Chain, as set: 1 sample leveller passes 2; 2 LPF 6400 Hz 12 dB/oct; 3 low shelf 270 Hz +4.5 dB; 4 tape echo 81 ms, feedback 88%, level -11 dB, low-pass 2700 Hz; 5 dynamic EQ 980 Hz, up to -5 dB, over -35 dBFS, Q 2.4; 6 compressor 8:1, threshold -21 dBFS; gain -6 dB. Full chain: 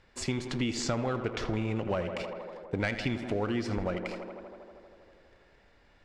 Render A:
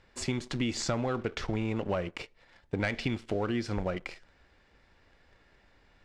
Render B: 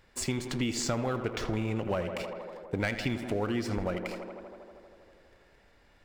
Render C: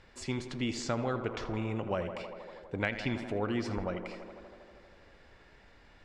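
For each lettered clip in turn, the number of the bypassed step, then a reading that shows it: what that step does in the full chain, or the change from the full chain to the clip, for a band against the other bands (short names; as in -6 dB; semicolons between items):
4, momentary loudness spread change -3 LU; 2, 8 kHz band +4.0 dB; 1, crest factor change +5.5 dB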